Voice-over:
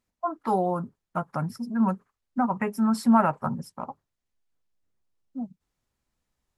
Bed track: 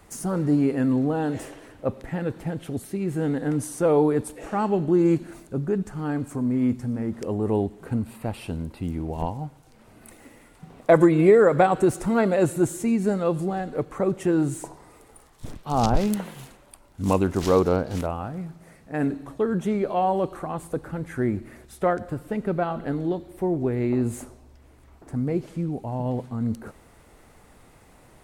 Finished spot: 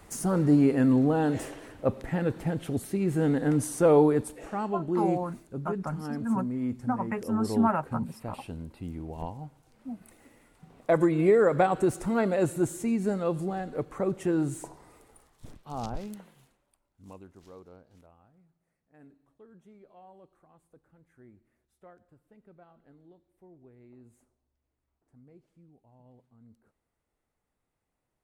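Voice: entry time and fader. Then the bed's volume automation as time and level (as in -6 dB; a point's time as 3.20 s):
4.50 s, -5.0 dB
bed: 3.97 s 0 dB
4.72 s -8.5 dB
10.71 s -8.5 dB
11.46 s -5 dB
14.93 s -5 dB
17.55 s -30.5 dB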